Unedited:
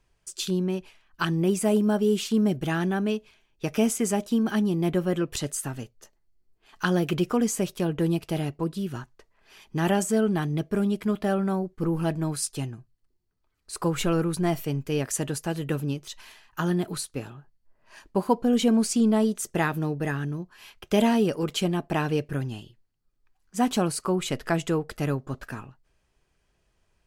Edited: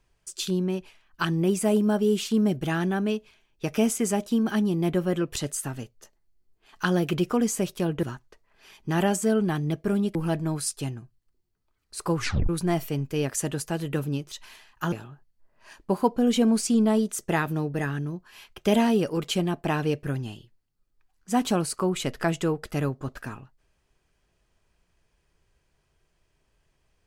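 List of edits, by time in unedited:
8.03–8.90 s: delete
11.02–11.91 s: delete
13.92 s: tape stop 0.33 s
16.68–17.18 s: delete

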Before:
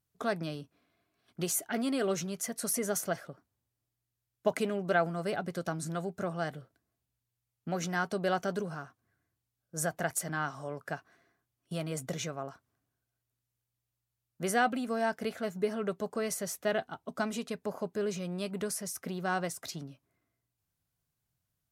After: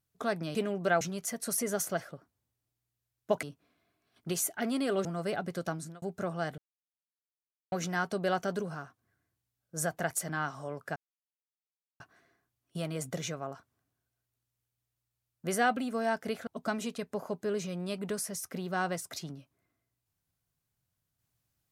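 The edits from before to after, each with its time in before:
0.55–2.17 s: swap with 4.59–5.05 s
5.71–6.02 s: fade out
6.58–7.72 s: mute
10.96 s: insert silence 1.04 s
15.43–16.99 s: delete

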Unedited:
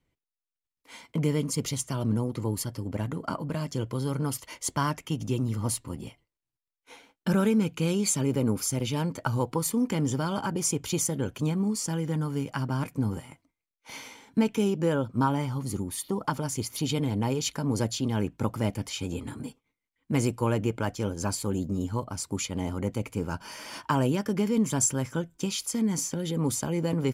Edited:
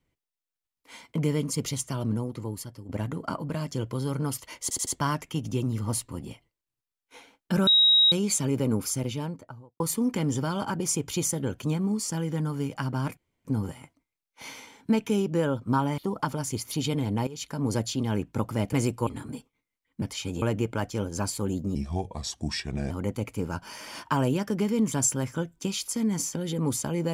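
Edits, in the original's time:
1.88–2.89 s: fade out, to -10.5 dB
4.63 s: stutter 0.08 s, 4 plays
7.43–7.88 s: bleep 3.81 kHz -15.5 dBFS
8.62–9.56 s: studio fade out
12.93 s: insert room tone 0.28 s
15.46–16.03 s: delete
17.32–17.70 s: fade in, from -16 dB
18.78–19.18 s: swap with 20.13–20.47 s
21.80–22.69 s: speed 77%

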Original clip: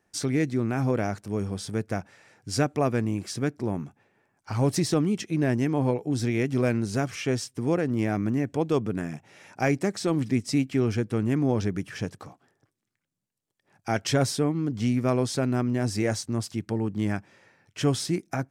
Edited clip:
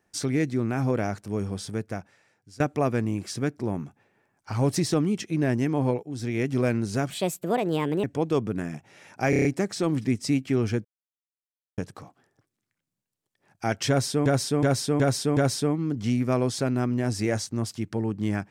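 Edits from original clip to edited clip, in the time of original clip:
1.58–2.60 s: fade out, to -23 dB
6.03–6.46 s: fade in, from -12.5 dB
7.10–8.43 s: speed 142%
9.69 s: stutter 0.03 s, 6 plays
11.09–12.02 s: mute
14.13–14.50 s: loop, 5 plays

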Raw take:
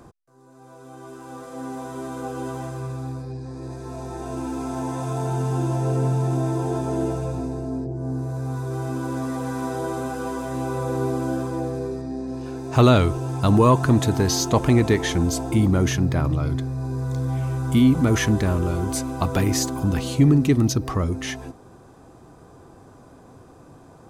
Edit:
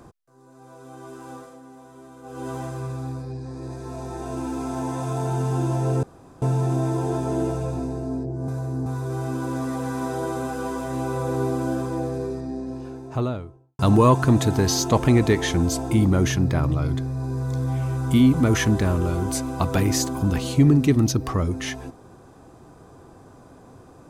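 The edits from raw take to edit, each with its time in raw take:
1.30–2.53 s: dip -13 dB, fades 0.30 s linear
6.03 s: insert room tone 0.39 s
8.09–8.47 s: reverse
11.93–13.40 s: studio fade out

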